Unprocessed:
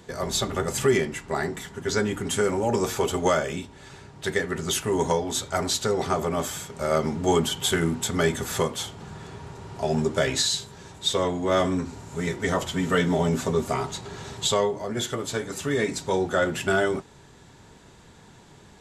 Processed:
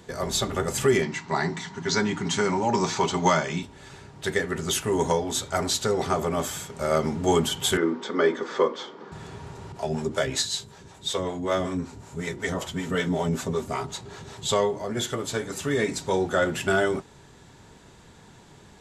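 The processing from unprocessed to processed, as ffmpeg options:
ffmpeg -i in.wav -filter_complex "[0:a]asettb=1/sr,asplit=3[link_01][link_02][link_03];[link_01]atrim=end=1.024[link_04];[link_02]atrim=start=1.02:end=3.63,asetpts=PTS-STARTPTS,afade=type=in:duration=0.004:curve=qsin,afade=type=out:start_time=2.606:duration=0.004:curve=qsin,highpass=120,equalizer=frequency=170:width_type=q:width=4:gain=8,equalizer=frequency=500:width_type=q:width=4:gain=-8,equalizer=frequency=950:width_type=q:width=4:gain=8,equalizer=frequency=2100:width_type=q:width=4:gain=4,equalizer=frequency=4200:width_type=q:width=4:gain=7,equalizer=frequency=6000:width_type=q:width=4:gain=5,lowpass=frequency=7100:width=0.5412,lowpass=frequency=7100:width=1.3066[link_05];[link_03]atrim=start=3.626[link_06];[link_04][link_05]acrossfade=duration=0.004:curve1=hsin:curve2=qsin[link_07];[link_07][link_06]acrossfade=duration=0.004:curve1=qsin:curve2=hsin,asettb=1/sr,asplit=3[link_08][link_09][link_10];[link_08]atrim=end=7.774[link_11];[link_09]atrim=start=7.77:end=9.12,asetpts=PTS-STARTPTS,afade=type=in:duration=0.004:curve=qsin,afade=type=out:start_time=1.346:duration=0.004:curve=qsin,highpass=frequency=240:width=0.5412,highpass=frequency=240:width=1.3066,equalizer=frequency=340:width_type=q:width=4:gain=5,equalizer=frequency=500:width_type=q:width=4:gain=6,equalizer=frequency=720:width_type=q:width=4:gain=-6,equalizer=frequency=1100:width_type=q:width=4:gain=5,equalizer=frequency=2700:width_type=q:width=4:gain=-9,equalizer=frequency=4000:width_type=q:width=4:gain=-6,lowpass=frequency=4500:width=0.5412,lowpass=frequency=4500:width=1.3066[link_12];[link_10]atrim=start=9.116[link_13];[link_11][link_12]acrossfade=duration=0.004:curve1=hsin:curve2=qsin[link_14];[link_14][link_13]acrossfade=duration=0.004:curve1=qsin:curve2=hsin,asettb=1/sr,asplit=3[link_15][link_16][link_17];[link_15]atrim=end=9.724[link_18];[link_16]atrim=start=9.72:end=14.49,asetpts=PTS-STARTPTS,afade=type=in:duration=0.004:curve=qsin,afade=type=out:start_time=4.766:duration=0.004:curve=qsin,acrossover=split=400[link_19][link_20];[link_19]aeval=exprs='val(0)*(1-0.7/2+0.7/2*cos(2*PI*5.3*n/s))':channel_layout=same[link_21];[link_20]aeval=exprs='val(0)*(1-0.7/2-0.7/2*cos(2*PI*5.3*n/s))':channel_layout=same[link_22];[link_21][link_22]amix=inputs=2:normalize=0[link_23];[link_17]atrim=start=14.486[link_24];[link_18][link_23]acrossfade=duration=0.004:curve1=hsin:curve2=qsin[link_25];[link_25][link_24]acrossfade=duration=0.004:curve1=qsin:curve2=hsin" out.wav

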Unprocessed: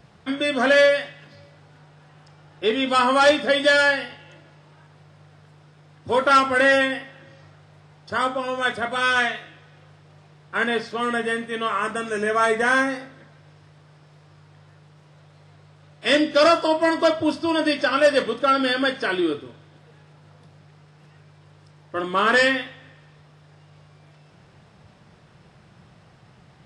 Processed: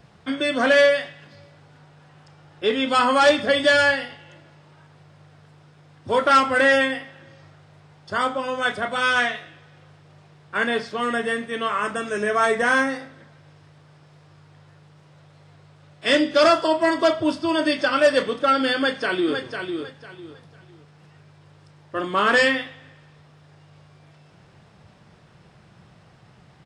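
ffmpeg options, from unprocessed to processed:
ffmpeg -i in.wav -filter_complex "[0:a]asettb=1/sr,asplit=3[link_01][link_02][link_03];[link_01]atrim=end=3.384[link_04];[link_02]atrim=start=3.38:end=3.94,asetpts=PTS-STARTPTS,afade=type=in:duration=0.004:curve=qsin,afade=type=out:start_time=0.556:duration=0.004:curve=qsin,equalizer=frequency=96:width_type=o:width=0.77:gain=11.5[link_05];[link_03]atrim=start=3.936[link_06];[link_04][link_05]acrossfade=duration=0.004:curve1=hsin:curve2=qsin[link_07];[link_07][link_06]acrossfade=duration=0.004:curve1=qsin:curve2=hsin,asplit=2[link_08][link_09];[link_09]afade=type=in:start_time=18.77:duration=0.01,afade=type=out:start_time=19.4:duration=0.01,aecho=0:1:500|1000|1500:0.473151|0.118288|0.029572[link_10];[link_08][link_10]amix=inputs=2:normalize=0" out.wav

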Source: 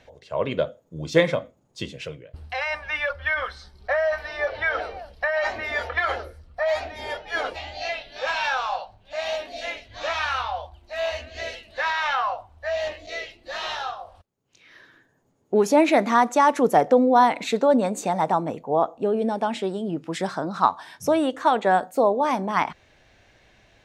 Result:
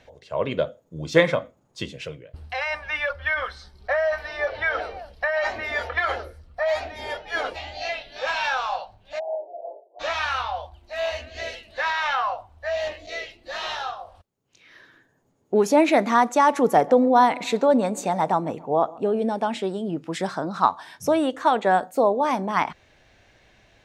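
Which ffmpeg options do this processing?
ffmpeg -i in.wav -filter_complex "[0:a]asettb=1/sr,asplit=3[link_01][link_02][link_03];[link_01]atrim=end=1.104[link_04];[link_02]atrim=start=1.1:end=1.84,asetpts=PTS-STARTPTS,afade=type=in:duration=0.004:curve=qsin,afade=type=out:start_time=0.736:duration=0.004:curve=qsin,equalizer=frequency=1300:width=0.93:gain=4.5[link_05];[link_03]atrim=start=1.836[link_06];[link_04][link_05]acrossfade=duration=0.004:curve1=hsin:curve2=qsin[link_07];[link_07][link_06]acrossfade=duration=0.004:curve1=qsin:curve2=hsin,asplit=3[link_08][link_09][link_10];[link_08]afade=type=out:start_time=9.18:duration=0.02[link_11];[link_09]asuperpass=centerf=550:order=12:qfactor=1.1,afade=type=in:start_time=9.18:duration=0.02,afade=type=out:start_time=9.99:duration=0.02[link_12];[link_10]afade=type=in:start_time=9.99:duration=0.02[link_13];[link_11][link_12][link_13]amix=inputs=3:normalize=0,asettb=1/sr,asplit=3[link_14][link_15][link_16];[link_14]atrim=end=16.264[link_17];[link_15]atrim=start=16.26:end=19.2,asetpts=PTS-STARTPTS,afade=type=in:duration=0.004:curve=qsin,afade=type=out:start_time=2.936:duration=0.004:curve=qsin,asplit=2[link_18][link_19];[link_19]adelay=138,lowpass=frequency=2000:poles=1,volume=-21.5dB,asplit=2[link_20][link_21];[link_21]adelay=138,lowpass=frequency=2000:poles=1,volume=0.54,asplit=2[link_22][link_23];[link_23]adelay=138,lowpass=frequency=2000:poles=1,volume=0.54,asplit=2[link_24][link_25];[link_25]adelay=138,lowpass=frequency=2000:poles=1,volume=0.54[link_26];[link_18][link_20][link_22][link_24][link_26]amix=inputs=5:normalize=0,atrim=end_sample=129654[link_27];[link_16]atrim=start=19.196[link_28];[link_17][link_27]acrossfade=duration=0.004:curve1=hsin:curve2=qsin[link_29];[link_29][link_28]acrossfade=duration=0.004:curve1=qsin:curve2=hsin" out.wav

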